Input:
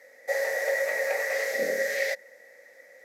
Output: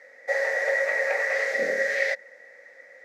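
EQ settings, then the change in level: air absorption 68 m; bell 1500 Hz +6 dB 1.6 oct; 0.0 dB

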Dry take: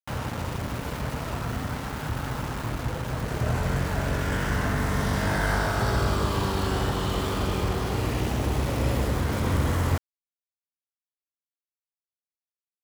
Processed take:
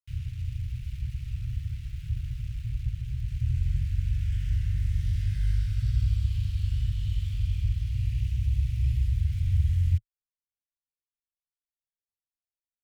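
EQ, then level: Chebyshev band-stop 110–2500 Hz, order 3; tilt -3 dB/oct; -8.0 dB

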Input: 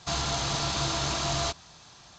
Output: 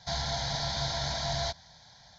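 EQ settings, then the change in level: fixed phaser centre 1800 Hz, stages 8; -1.0 dB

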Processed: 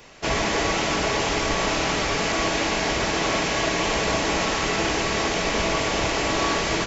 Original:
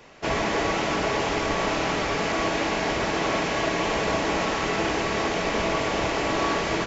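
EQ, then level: low shelf 82 Hz +7 dB; high shelf 3400 Hz +9.5 dB; 0.0 dB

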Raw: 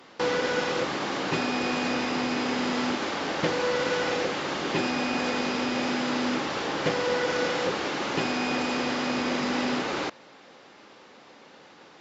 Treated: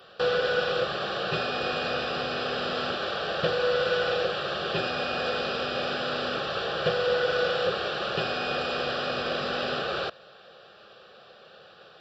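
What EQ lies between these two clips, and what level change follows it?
fixed phaser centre 1400 Hz, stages 8; +3.0 dB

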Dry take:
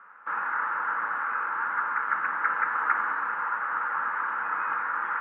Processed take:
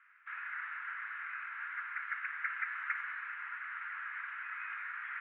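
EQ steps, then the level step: ladder high-pass 1900 Hz, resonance 55%; air absorption 110 m; tilt +2.5 dB/oct; +1.0 dB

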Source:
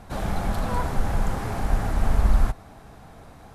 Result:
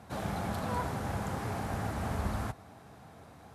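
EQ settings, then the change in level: HPF 76 Hz 24 dB/oct; -5.5 dB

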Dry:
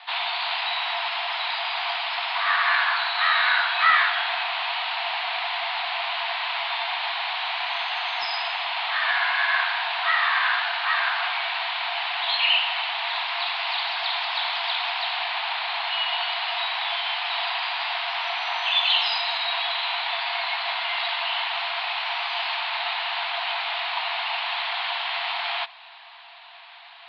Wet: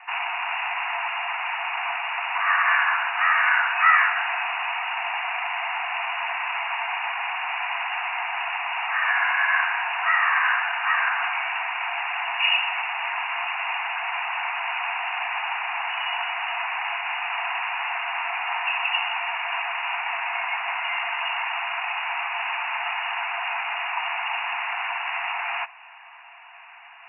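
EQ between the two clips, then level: steep high-pass 720 Hz 48 dB/oct; brick-wall FIR low-pass 2900 Hz; +1.5 dB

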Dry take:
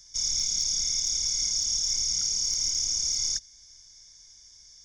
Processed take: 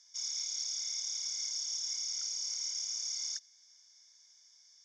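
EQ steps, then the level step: HPF 730 Hz 12 dB/oct; air absorption 63 m; -6.0 dB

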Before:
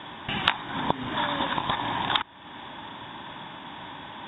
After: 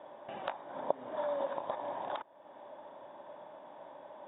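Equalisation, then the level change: band-pass 580 Hz, Q 6.2; +4.0 dB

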